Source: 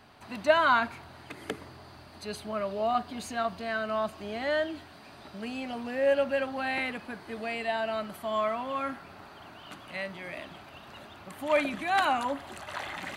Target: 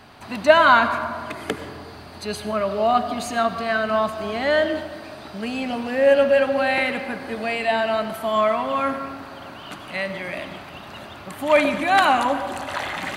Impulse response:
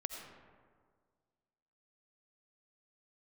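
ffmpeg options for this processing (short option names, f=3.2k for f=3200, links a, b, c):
-filter_complex "[0:a]asplit=2[a][b];[1:a]atrim=start_sample=2205,asetrate=38808,aresample=44100[c];[b][c]afir=irnorm=-1:irlink=0,volume=0.5dB[d];[a][d]amix=inputs=2:normalize=0,volume=3.5dB"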